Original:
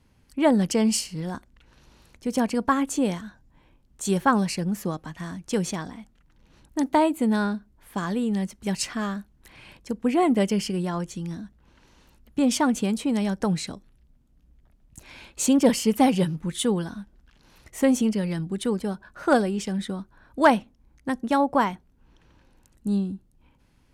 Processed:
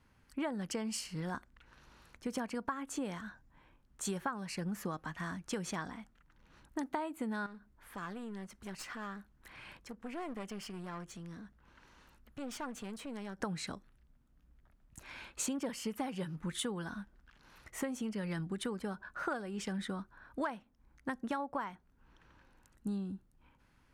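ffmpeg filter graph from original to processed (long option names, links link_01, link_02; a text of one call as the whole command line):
ffmpeg -i in.wav -filter_complex "[0:a]asettb=1/sr,asplit=3[link_01][link_02][link_03];[link_01]atrim=end=7.464[link_04];[link_02]atrim=start=7.46:end=13.39,asetpts=PTS-STARTPTS,afade=type=in:duration=0.004:curve=qsin,afade=type=out:start_time=5.926:duration=0.004:curve=qsin,acompressor=threshold=-41dB:ratio=2:attack=3.2:release=140:knee=1:detection=peak,aeval=exprs='clip(val(0),-1,0.01)':channel_layout=same[link_05];[link_03]atrim=start=13.386[link_06];[link_04][link_05]acrossfade=duration=0.004:curve1=hsin:curve2=qsin[link_07];[link_07][link_06]acrossfade=duration=0.004:curve1=qsin:curve2=hsin,equalizer=frequency=1400:width=0.99:gain=9,acompressor=threshold=-26dB:ratio=16,volume=-7.5dB" out.wav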